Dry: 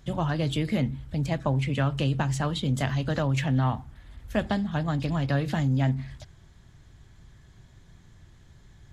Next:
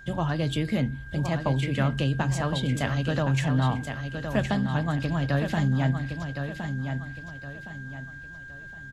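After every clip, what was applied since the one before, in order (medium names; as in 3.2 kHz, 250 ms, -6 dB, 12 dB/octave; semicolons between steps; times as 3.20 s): whistle 1.6 kHz -45 dBFS; feedback delay 1065 ms, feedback 35%, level -7 dB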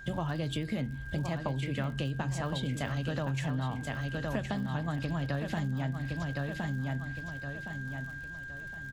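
compression, threshold -30 dBFS, peak gain reduction 10.5 dB; crackle 59 per s -43 dBFS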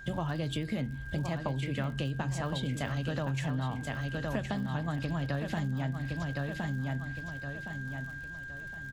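no audible change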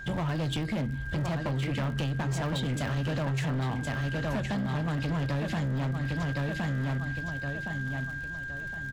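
treble shelf 8.7 kHz -5 dB; hard clipper -32 dBFS, distortion -11 dB; trim +5.5 dB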